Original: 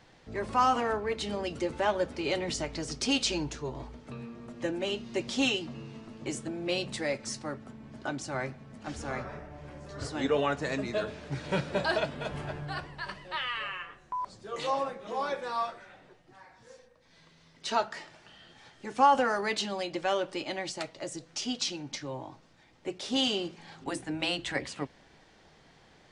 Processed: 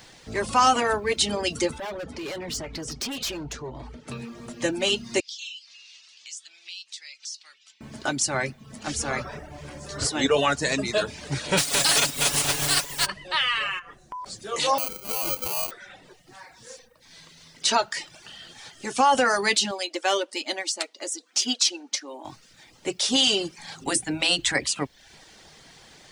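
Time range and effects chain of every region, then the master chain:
1.78–4.08 hard clip -32 dBFS + LPF 1800 Hz 6 dB/oct + compressor 3:1, threshold -39 dBFS
5.2–7.81 Butterworth band-pass 4100 Hz, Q 1.1 + compressor 2.5:1, threshold -56 dBFS
11.57–13.05 spectral contrast lowered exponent 0.43 + comb 7.1 ms, depth 86%
13.79–14.26 high shelf 2300 Hz -8 dB + compressor 3:1, threshold -43 dBFS
14.78–15.71 de-hum 71 Hz, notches 31 + sample-rate reducer 1800 Hz
19.71–22.25 brick-wall FIR high-pass 210 Hz + phaser 1.2 Hz, delay 2.9 ms, feedback 21% + upward expander, over -39 dBFS
whole clip: pre-emphasis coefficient 0.8; reverb removal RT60 0.52 s; maximiser +28.5 dB; gain -8.5 dB

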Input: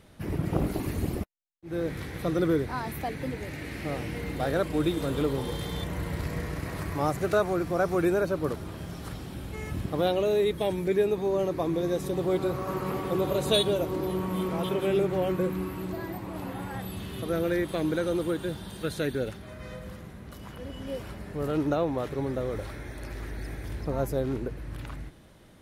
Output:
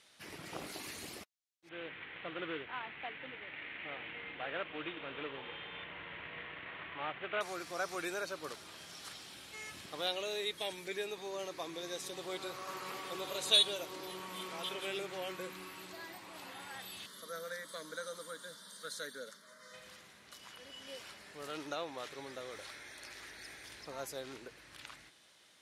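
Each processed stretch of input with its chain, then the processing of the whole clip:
1.69–7.41 CVSD 16 kbps + careless resampling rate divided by 2×, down none, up hold
17.06–19.74 HPF 120 Hz + fixed phaser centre 520 Hz, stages 8
whole clip: LPF 5500 Hz 12 dB/oct; differentiator; gain +8 dB

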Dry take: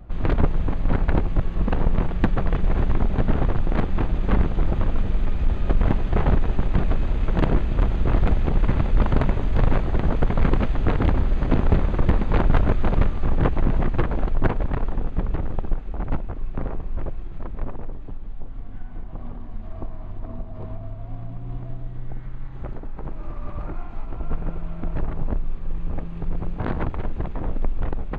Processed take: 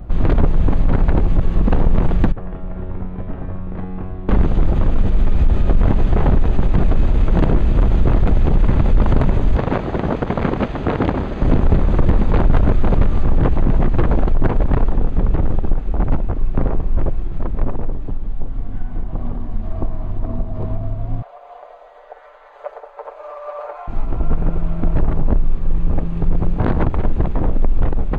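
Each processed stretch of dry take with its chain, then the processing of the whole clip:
2.32–4.29 LPF 2600 Hz + resonator 92 Hz, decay 1.6 s, mix 90%
9.56–11.42 HPF 270 Hz 6 dB/oct + air absorption 57 m
21.22–23.88 elliptic high-pass 520 Hz, stop band 50 dB + tilt shelf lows +4.5 dB, about 1100 Hz + comb 6.8 ms, depth 78%
whole clip: bell 2300 Hz -5 dB 2.7 oct; maximiser +15.5 dB; gain -5 dB

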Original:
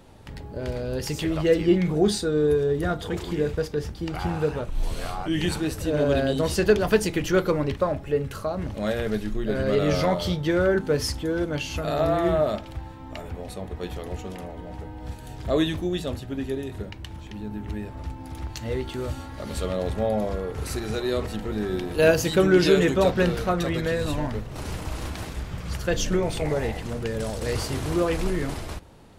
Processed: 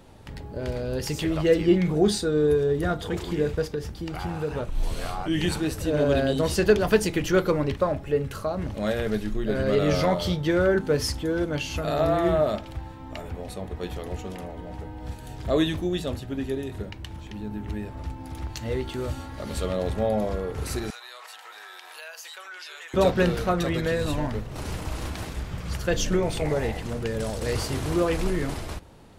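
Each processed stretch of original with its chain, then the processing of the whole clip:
3.75–4.51 compressor 1.5:1, threshold -32 dBFS + high shelf 11000 Hz +4 dB
20.9–22.94 HPF 880 Hz 24 dB/oct + compressor 5:1, threshold -39 dBFS
whole clip: dry

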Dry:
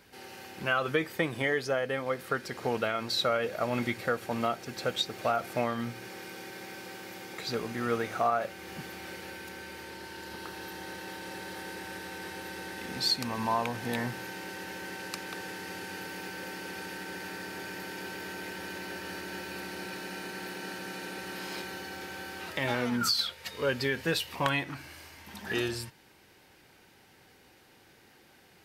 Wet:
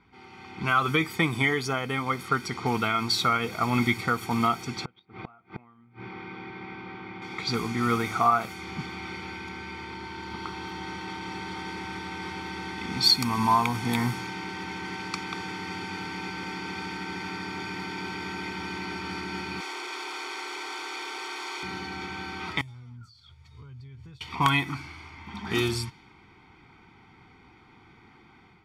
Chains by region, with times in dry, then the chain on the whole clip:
4.85–7.22 air absorption 280 m + flipped gate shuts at -27 dBFS, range -30 dB
19.6–21.63 infinite clipping + steep high-pass 350 Hz
22.61–24.21 EQ curve 130 Hz 0 dB, 190 Hz -19 dB, 2300 Hz -22 dB, 7500 Hz -5 dB + compressor 20:1, threshold -49 dBFS
whole clip: low-pass opened by the level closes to 2200 Hz, open at -28 dBFS; comb 0.9 ms, depth 92%; AGC gain up to 7 dB; gain -3 dB

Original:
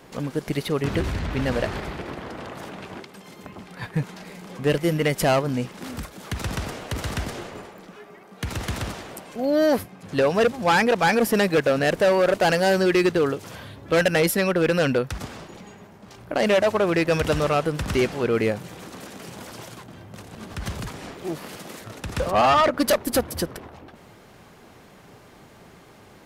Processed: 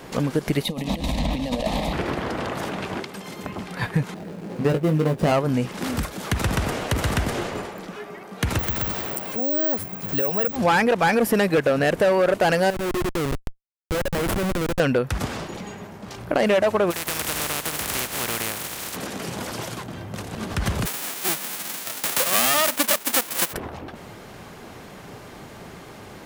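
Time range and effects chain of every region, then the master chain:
0.63–1.93 bell 3800 Hz +8 dB 0.25 oct + negative-ratio compressor -27 dBFS, ratio -0.5 + fixed phaser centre 390 Hz, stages 6
4.14–5.32 median filter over 41 samples + HPF 55 Hz + doubler 19 ms -5.5 dB
8.59–10.56 compressor 2:1, threshold -37 dBFS + careless resampling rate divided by 2×, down none, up zero stuff
12.7–14.8 compressor, threshold -27 dBFS + Schmitt trigger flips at -27.5 dBFS
16.9–18.95 spectral contrast lowered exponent 0.22 + HPF 45 Hz + compressor 4:1, threshold -31 dBFS
20.85–23.52 spectral whitening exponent 0.1 + HPF 210 Hz
whole clip: dynamic EQ 5000 Hz, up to -4 dB, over -43 dBFS, Q 1; compressor 3:1, threshold -27 dBFS; gain +8 dB

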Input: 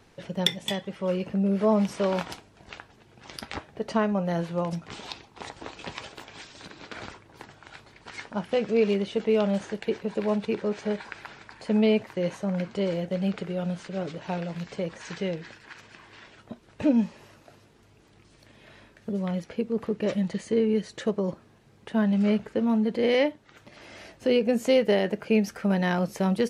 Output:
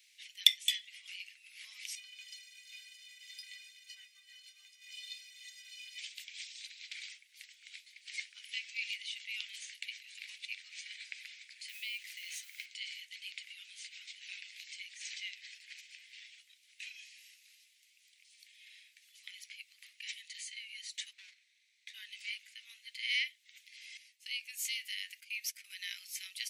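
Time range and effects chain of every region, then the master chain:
1.95–5.99 zero-crossing step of -30 dBFS + air absorption 73 m + metallic resonator 180 Hz, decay 0.28 s, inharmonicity 0.03
11.68–12.66 G.711 law mismatch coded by mu + HPF 580 Hz + compressor, threshold -29 dBFS
21.13–21.94 minimum comb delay 0.51 ms + air absorption 71 m
23.97–26.02 gate -41 dBFS, range -12 dB + high shelf 7000 Hz +5 dB + compressor 2:1, threshold -25 dBFS
whole clip: Chebyshev high-pass 2100 Hz, order 5; high shelf 8300 Hz +7 dB

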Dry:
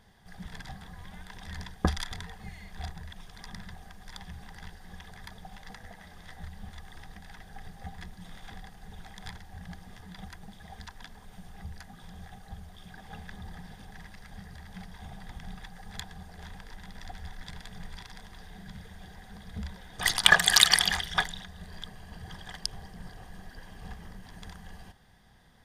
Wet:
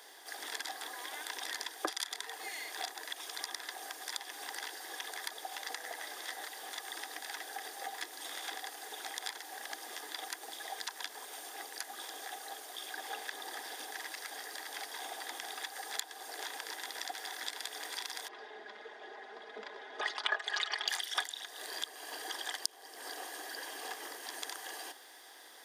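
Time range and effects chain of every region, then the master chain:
18.28–20.88 tape spacing loss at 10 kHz 38 dB + comb 4.8 ms, depth 70%
whole clip: steep high-pass 290 Hz 72 dB/oct; high shelf 4400 Hz +11.5 dB; compressor 3:1, threshold -44 dBFS; gain +7 dB

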